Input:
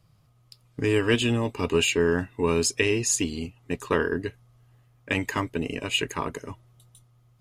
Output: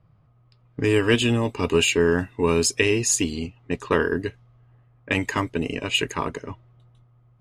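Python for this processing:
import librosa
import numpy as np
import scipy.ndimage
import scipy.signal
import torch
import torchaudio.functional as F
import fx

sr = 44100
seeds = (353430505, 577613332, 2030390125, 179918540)

y = fx.env_lowpass(x, sr, base_hz=1700.0, full_db=-22.5)
y = y * librosa.db_to_amplitude(3.0)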